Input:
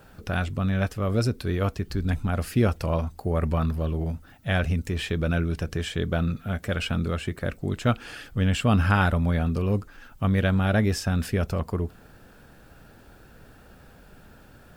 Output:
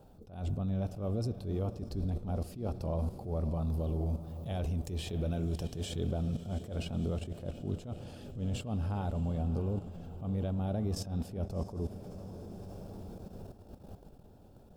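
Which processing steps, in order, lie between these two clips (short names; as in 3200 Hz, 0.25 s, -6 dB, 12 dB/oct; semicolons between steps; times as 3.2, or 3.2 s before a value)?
compressor 8:1, threshold -26 dBFS, peak gain reduction 11 dB; 3.66–6.04 high shelf 2200 Hz +7.5 dB; diffused feedback echo 0.664 s, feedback 57%, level -13 dB; level quantiser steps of 12 dB; EQ curve 810 Hz 0 dB, 1700 Hz -21 dB, 3600 Hz -8 dB; reverb RT60 1.9 s, pre-delay 63 ms, DRR 17 dB; attack slew limiter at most 120 dB/s; gain +4 dB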